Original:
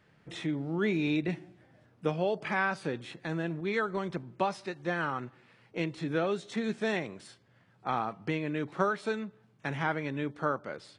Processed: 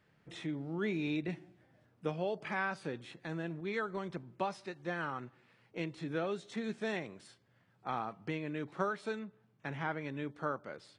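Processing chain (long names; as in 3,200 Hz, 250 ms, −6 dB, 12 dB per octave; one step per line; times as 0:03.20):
0:09.19–0:10.01: high-shelf EQ 6,200 Hz −9 dB
level −6 dB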